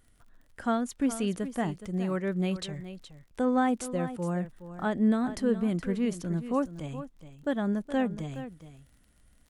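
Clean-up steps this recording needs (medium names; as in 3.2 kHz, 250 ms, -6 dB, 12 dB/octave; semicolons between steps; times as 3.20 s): de-click; inverse comb 419 ms -12.5 dB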